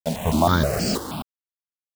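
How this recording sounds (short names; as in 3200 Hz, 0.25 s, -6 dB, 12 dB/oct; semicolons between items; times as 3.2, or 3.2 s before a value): a quantiser's noise floor 6-bit, dither none; random-step tremolo 4.1 Hz, depth 100%; notches that jump at a steady rate 6.3 Hz 330–3700 Hz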